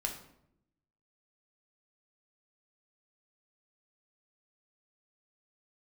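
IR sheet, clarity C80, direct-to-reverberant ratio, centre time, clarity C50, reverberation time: 11.5 dB, 2.0 dB, 21 ms, 7.5 dB, 0.75 s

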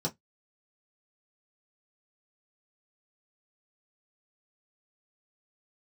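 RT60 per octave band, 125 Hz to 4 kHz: 0.20, 0.15, 0.10, 0.10, 0.10, 0.10 s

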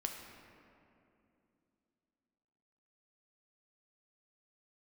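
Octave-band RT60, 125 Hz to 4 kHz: 3.2, 3.7, 3.0, 2.5, 2.2, 1.4 s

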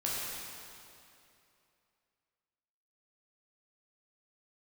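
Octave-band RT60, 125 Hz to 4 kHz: 2.7, 2.7, 2.8, 2.6, 2.5, 2.3 s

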